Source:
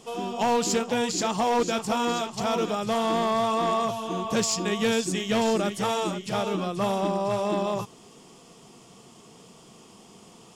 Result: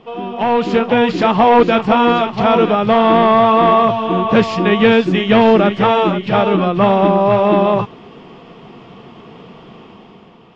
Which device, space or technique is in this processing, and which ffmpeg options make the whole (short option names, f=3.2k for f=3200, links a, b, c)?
action camera in a waterproof case: -af "lowpass=f=3k:w=0.5412,lowpass=f=3k:w=1.3066,dynaudnorm=f=130:g=11:m=7.5dB,volume=6.5dB" -ar 22050 -c:a aac -b:a 48k